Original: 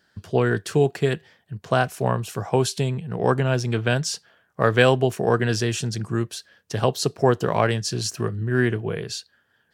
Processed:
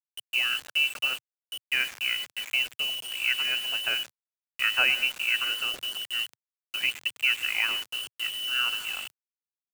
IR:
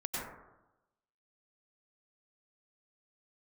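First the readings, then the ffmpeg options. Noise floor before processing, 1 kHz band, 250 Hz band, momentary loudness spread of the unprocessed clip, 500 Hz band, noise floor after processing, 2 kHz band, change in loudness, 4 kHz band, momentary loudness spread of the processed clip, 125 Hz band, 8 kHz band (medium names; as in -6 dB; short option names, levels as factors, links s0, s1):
-67 dBFS, -14.5 dB, -30.5 dB, 10 LU, -28.0 dB, under -85 dBFS, +2.5 dB, -3.5 dB, +7.0 dB, 9 LU, under -40 dB, -8.0 dB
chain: -filter_complex "[0:a]lowpass=f=2600:t=q:w=0.5098,lowpass=f=2600:t=q:w=0.6013,lowpass=f=2600:t=q:w=0.9,lowpass=f=2600:t=q:w=2.563,afreqshift=-3100,asplit=2[s0][s1];[1:a]atrim=start_sample=2205[s2];[s1][s2]afir=irnorm=-1:irlink=0,volume=0.188[s3];[s0][s3]amix=inputs=2:normalize=0,acrusher=bits=4:mix=0:aa=0.000001,equalizer=f=120:t=o:w=0.3:g=-14,volume=0.398"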